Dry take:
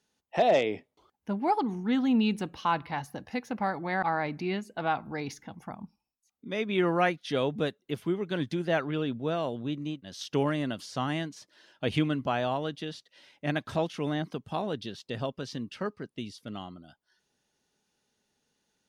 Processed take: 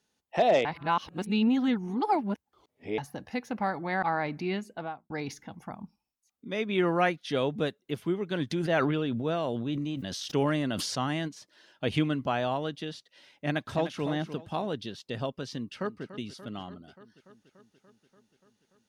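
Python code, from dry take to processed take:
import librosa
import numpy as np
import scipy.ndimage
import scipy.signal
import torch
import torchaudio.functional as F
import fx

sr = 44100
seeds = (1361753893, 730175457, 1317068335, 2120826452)

y = fx.studio_fade_out(x, sr, start_s=4.63, length_s=0.47)
y = fx.sustainer(y, sr, db_per_s=21.0, at=(8.5, 11.27), fade=0.02)
y = fx.echo_throw(y, sr, start_s=13.47, length_s=0.58, ms=300, feedback_pct=25, wet_db=-10.0)
y = fx.echo_throw(y, sr, start_s=15.55, length_s=0.49, ms=290, feedback_pct=75, wet_db=-14.0)
y = fx.edit(y, sr, fx.reverse_span(start_s=0.65, length_s=2.33), tone=tone)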